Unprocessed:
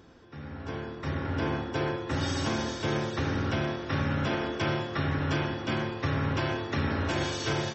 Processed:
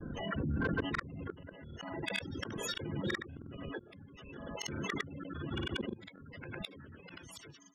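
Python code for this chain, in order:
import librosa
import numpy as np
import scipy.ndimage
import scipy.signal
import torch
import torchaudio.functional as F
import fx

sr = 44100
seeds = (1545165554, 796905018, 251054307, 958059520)

p1 = fx.pitch_trill(x, sr, semitones=11.0, every_ms=154)
p2 = fx.spec_gate(p1, sr, threshold_db=-15, keep='strong')
p3 = fx.hum_notches(p2, sr, base_hz=60, count=7)
p4 = fx.dereverb_blind(p3, sr, rt60_s=0.96)
p5 = fx.peak_eq(p4, sr, hz=750.0, db=-14.5, octaves=0.93)
p6 = fx.hpss(p5, sr, part='harmonic', gain_db=-11)
p7 = fx.level_steps(p6, sr, step_db=21)
p8 = p6 + (p7 * librosa.db_to_amplitude(2.0))
p9 = fx.dispersion(p8, sr, late='lows', ms=52.0, hz=320.0)
p10 = fx.gate_flip(p9, sr, shuts_db=-32.0, range_db=-34)
p11 = fx.granulator(p10, sr, seeds[0], grain_ms=100.0, per_s=20.0, spray_ms=100.0, spread_st=0)
p12 = 10.0 ** (-40.0 / 20.0) * np.tanh(p11 / 10.0 ** (-40.0 / 20.0))
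p13 = fx.pre_swell(p12, sr, db_per_s=30.0)
y = p13 * librosa.db_to_amplitude(14.0)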